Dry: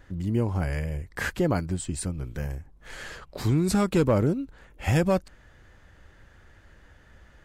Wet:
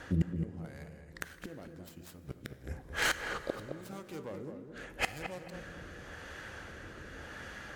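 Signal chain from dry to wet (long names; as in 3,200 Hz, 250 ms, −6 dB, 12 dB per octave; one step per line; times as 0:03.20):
stylus tracing distortion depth 0.3 ms
high-pass filter 250 Hz 6 dB per octave
mains-hum notches 60/120/180/240/300/360/420/480/540 Hz
in parallel at −3 dB: brickwall limiter −23 dBFS, peak gain reduction 11 dB
on the sum: speed change −4%
rotating-speaker cabinet horn 0.9 Hz
gate with flip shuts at −27 dBFS, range −30 dB
on a send: feedback echo with a low-pass in the loop 215 ms, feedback 31%, low-pass 1,400 Hz, level −6 dB
on the sum: dense smooth reverb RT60 2.7 s, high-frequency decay 0.75×, DRR 13 dB
level +10 dB
MP3 96 kbit/s 48,000 Hz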